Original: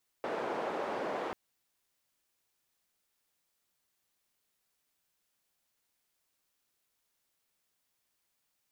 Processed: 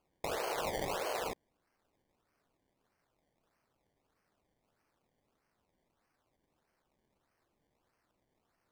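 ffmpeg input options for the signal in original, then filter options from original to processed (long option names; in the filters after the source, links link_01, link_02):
-f lavfi -i "anoisesrc=color=white:duration=1.09:sample_rate=44100:seed=1,highpass=frequency=400,lowpass=frequency=670,volume=-13.1dB"
-af "highpass=frequency=400:width=0.5412,highpass=frequency=400:width=1.3066,acrusher=samples=23:mix=1:aa=0.000001:lfo=1:lforange=23:lforate=1.6"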